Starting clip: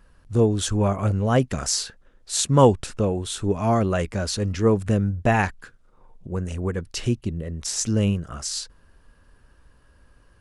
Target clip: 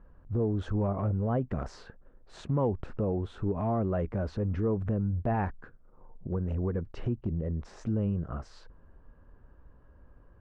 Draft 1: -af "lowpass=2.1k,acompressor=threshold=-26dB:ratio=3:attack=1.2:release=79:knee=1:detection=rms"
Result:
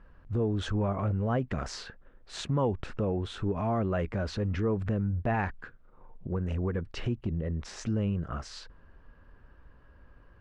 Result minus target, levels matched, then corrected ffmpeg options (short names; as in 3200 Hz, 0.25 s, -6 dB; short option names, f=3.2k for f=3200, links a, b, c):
2000 Hz band +7.5 dB
-af "lowpass=1k,acompressor=threshold=-26dB:ratio=3:attack=1.2:release=79:knee=1:detection=rms"